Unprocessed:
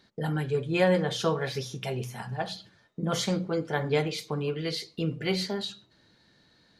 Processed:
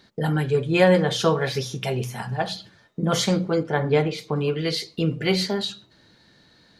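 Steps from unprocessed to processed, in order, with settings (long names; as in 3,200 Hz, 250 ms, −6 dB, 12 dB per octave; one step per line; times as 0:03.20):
0:03.63–0:04.36: high-shelf EQ 3,200 Hz −10.5 dB
level +6.5 dB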